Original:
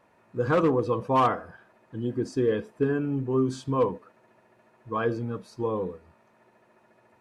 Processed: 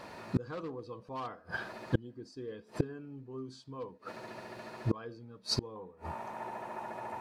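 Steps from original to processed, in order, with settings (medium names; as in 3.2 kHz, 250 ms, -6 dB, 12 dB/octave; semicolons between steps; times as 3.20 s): peaking EQ 4.5 kHz +11.5 dB 0.62 oct, from 5.76 s 860 Hz; inverted gate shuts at -30 dBFS, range -33 dB; trim +14.5 dB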